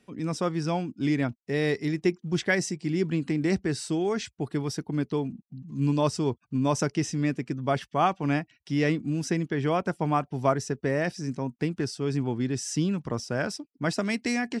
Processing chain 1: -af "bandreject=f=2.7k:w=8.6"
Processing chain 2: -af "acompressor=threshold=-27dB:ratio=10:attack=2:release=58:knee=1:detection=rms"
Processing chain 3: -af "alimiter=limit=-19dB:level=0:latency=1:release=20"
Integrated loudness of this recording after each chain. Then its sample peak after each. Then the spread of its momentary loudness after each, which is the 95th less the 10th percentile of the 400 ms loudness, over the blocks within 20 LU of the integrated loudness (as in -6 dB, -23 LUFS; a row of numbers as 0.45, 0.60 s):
-28.5, -34.0, -30.0 LUFS; -10.5, -21.0, -19.0 dBFS; 5, 3, 4 LU